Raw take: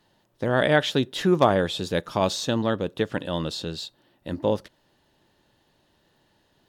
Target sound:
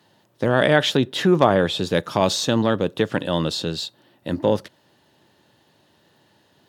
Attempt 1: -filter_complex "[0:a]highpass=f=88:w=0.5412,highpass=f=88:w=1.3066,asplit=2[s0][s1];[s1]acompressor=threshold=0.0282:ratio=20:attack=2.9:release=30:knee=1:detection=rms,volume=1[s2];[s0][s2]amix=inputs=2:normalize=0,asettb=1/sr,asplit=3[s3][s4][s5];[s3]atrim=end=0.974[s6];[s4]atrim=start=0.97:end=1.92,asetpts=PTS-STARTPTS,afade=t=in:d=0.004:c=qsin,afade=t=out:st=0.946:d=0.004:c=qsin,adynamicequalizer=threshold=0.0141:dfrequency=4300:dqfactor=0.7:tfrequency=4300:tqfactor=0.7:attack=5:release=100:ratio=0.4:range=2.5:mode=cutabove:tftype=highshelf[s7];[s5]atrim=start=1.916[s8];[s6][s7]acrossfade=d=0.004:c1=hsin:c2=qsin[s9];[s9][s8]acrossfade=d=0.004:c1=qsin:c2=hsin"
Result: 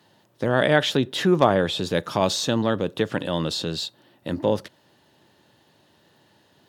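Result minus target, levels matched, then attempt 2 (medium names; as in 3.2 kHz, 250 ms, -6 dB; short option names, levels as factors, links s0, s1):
compression: peak gain reduction +10 dB
-filter_complex "[0:a]highpass=f=88:w=0.5412,highpass=f=88:w=1.3066,asplit=2[s0][s1];[s1]acompressor=threshold=0.0944:ratio=20:attack=2.9:release=30:knee=1:detection=rms,volume=1[s2];[s0][s2]amix=inputs=2:normalize=0,asettb=1/sr,asplit=3[s3][s4][s5];[s3]atrim=end=0.974[s6];[s4]atrim=start=0.97:end=1.92,asetpts=PTS-STARTPTS,afade=t=in:d=0.004:c=qsin,afade=t=out:st=0.946:d=0.004:c=qsin,adynamicequalizer=threshold=0.0141:dfrequency=4300:dqfactor=0.7:tfrequency=4300:tqfactor=0.7:attack=5:release=100:ratio=0.4:range=2.5:mode=cutabove:tftype=highshelf[s7];[s5]atrim=start=1.916[s8];[s6][s7]acrossfade=d=0.004:c1=hsin:c2=qsin[s9];[s9][s8]acrossfade=d=0.004:c1=qsin:c2=hsin"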